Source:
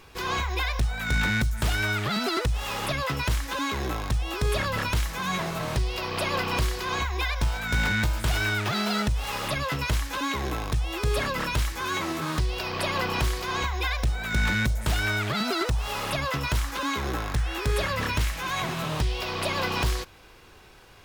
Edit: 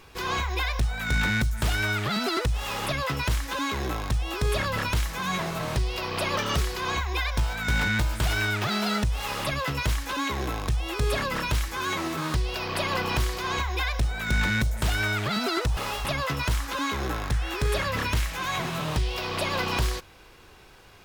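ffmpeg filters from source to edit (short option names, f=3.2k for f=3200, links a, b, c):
-filter_complex "[0:a]asplit=5[a][b][c][d][e];[a]atrim=end=6.374[f];[b]atrim=start=6.37:end=6.65,asetpts=PTS-STARTPTS,asetrate=51597,aresample=44100[g];[c]atrim=start=6.646:end=15.812[h];[d]atrim=start=15.808:end=16.092,asetpts=PTS-STARTPTS,areverse[i];[e]atrim=start=16.088[j];[f][g]acrossfade=d=0.004:c1=hsin:c2=hsin[k];[k][h]acrossfade=d=0.004:c1=hsin:c2=hsin[l];[l][i]acrossfade=d=0.004:c1=hsin:c2=hsin[m];[m][j]acrossfade=d=0.004:c1=hsin:c2=hsin"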